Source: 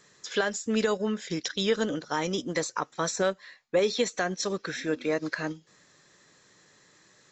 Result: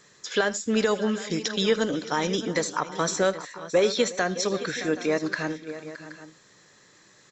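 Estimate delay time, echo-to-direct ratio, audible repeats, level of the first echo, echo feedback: 80 ms, -11.0 dB, 4, -19.0 dB, no regular repeats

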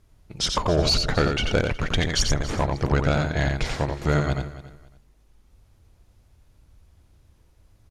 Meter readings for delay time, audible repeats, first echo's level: 88 ms, 5, -5.0 dB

